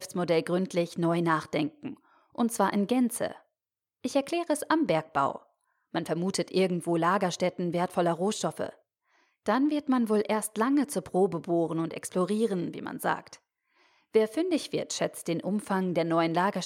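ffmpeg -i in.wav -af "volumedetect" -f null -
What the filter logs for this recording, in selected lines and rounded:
mean_volume: -28.8 dB
max_volume: -11.1 dB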